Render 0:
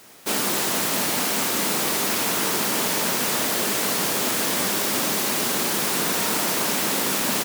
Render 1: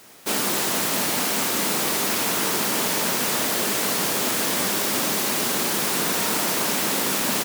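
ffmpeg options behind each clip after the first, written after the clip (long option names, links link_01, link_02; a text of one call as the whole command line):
ffmpeg -i in.wav -af anull out.wav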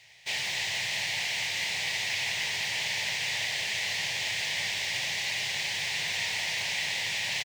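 ffmpeg -i in.wav -af "firequalizer=gain_entry='entry(120,0);entry(230,-28);entry(580,-12);entry(840,-7);entry(1300,-23);entry(1900,6);entry(6800,-6);entry(11000,-22)':delay=0.05:min_phase=1,volume=-4dB" out.wav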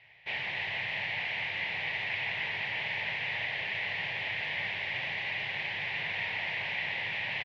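ffmpeg -i in.wav -af "lowpass=frequency=2700:width=0.5412,lowpass=frequency=2700:width=1.3066" out.wav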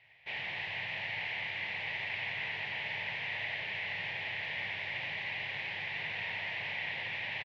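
ffmpeg -i in.wav -af "aecho=1:1:89:0.473,volume=-4.5dB" out.wav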